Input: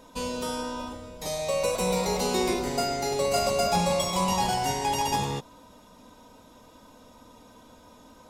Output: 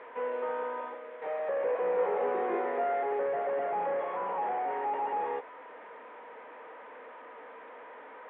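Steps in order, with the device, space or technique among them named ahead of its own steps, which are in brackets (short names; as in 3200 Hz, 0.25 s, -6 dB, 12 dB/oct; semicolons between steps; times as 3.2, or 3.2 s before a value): digital answering machine (BPF 330–3100 Hz; delta modulation 16 kbps, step -41 dBFS; speaker cabinet 390–3200 Hz, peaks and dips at 460 Hz +10 dB, 820 Hz +5 dB, 1200 Hz +3 dB, 1800 Hz +6 dB, 2800 Hz -7 dB); 1.96–3.03 doubler 20 ms -4 dB; gain -3.5 dB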